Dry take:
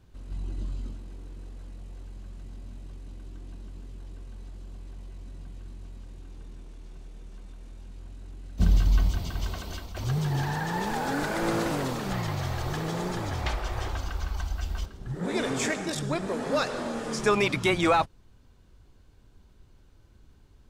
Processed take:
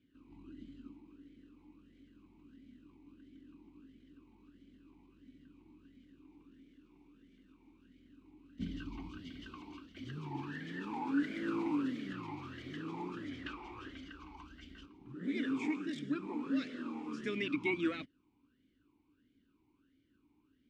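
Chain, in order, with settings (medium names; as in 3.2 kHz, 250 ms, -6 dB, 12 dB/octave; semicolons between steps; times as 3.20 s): talking filter i-u 1.5 Hz; trim +2.5 dB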